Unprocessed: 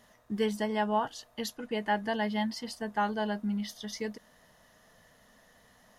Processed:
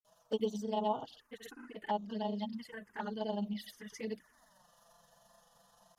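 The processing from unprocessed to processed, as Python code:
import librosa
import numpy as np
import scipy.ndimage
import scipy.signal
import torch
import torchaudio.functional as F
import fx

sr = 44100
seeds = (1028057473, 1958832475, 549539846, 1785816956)

y = fx.rider(x, sr, range_db=5, speed_s=2.0)
y = fx.env_phaser(y, sr, low_hz=330.0, high_hz=2200.0, full_db=-25.5)
y = fx.granulator(y, sr, seeds[0], grain_ms=80.0, per_s=23.0, spray_ms=100.0, spread_st=0)
y = fx.env_flanger(y, sr, rest_ms=6.5, full_db=-28.0)
y = fx.low_shelf(y, sr, hz=190.0, db=-10.5)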